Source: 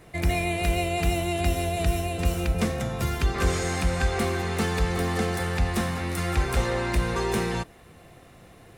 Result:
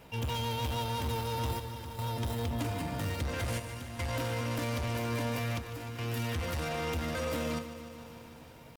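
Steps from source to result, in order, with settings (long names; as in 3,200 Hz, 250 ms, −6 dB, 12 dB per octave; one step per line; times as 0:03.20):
soft clipping −28 dBFS, distortion −7 dB
square-wave tremolo 0.5 Hz, depth 65%, duty 80%
pitch shifter +5 semitones
on a send at −11.5 dB: convolution reverb RT60 0.15 s, pre-delay 3 ms
on the sum: feedback echo at a low word length 150 ms, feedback 80%, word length 9 bits, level −13.5 dB
level −3.5 dB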